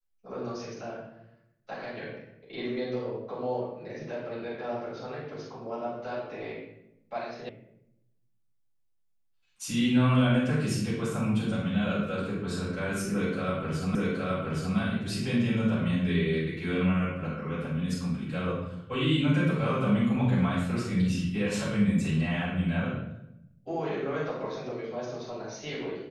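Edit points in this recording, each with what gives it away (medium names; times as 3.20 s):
7.49 s: sound stops dead
13.95 s: repeat of the last 0.82 s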